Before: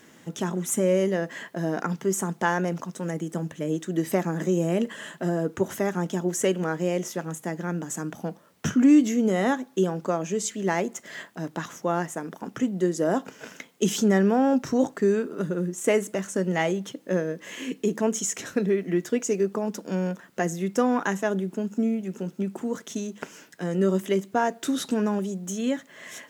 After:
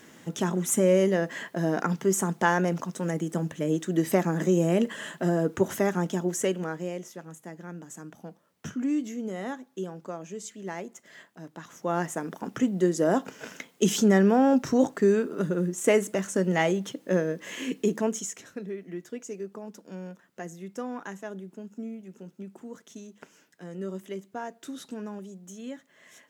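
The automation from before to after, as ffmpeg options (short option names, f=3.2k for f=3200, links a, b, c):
-af "volume=12.5dB,afade=t=out:st=5.83:d=1.24:silence=0.251189,afade=t=in:st=11.65:d=0.43:silence=0.266073,afade=t=out:st=17.81:d=0.62:silence=0.223872"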